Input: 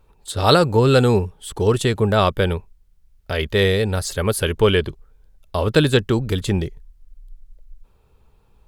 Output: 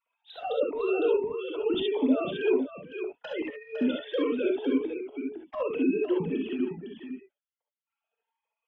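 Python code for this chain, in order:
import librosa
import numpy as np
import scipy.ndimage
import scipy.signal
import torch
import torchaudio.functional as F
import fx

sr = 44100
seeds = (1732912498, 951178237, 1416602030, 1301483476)

y = fx.sine_speech(x, sr)
y = fx.doppler_pass(y, sr, speed_mps=6, closest_m=2.4, pass_at_s=3.04)
y = fx.high_shelf(y, sr, hz=2800.0, db=7.0)
y = fx.over_compress(y, sr, threshold_db=-32.0, ratio=-1.0)
y = fx.env_flanger(y, sr, rest_ms=4.4, full_db=-31.0)
y = fx.low_shelf(y, sr, hz=250.0, db=4.5)
y = y + 10.0 ** (-8.0 / 20.0) * np.pad(y, (int(507 * sr / 1000.0), 0))[:len(y)]
y = fx.rev_gated(y, sr, seeds[0], gate_ms=90, shape='rising', drr_db=-0.5)
y = fx.notch_cascade(y, sr, direction='rising', hz=1.4)
y = y * 10.0 ** (3.0 / 20.0)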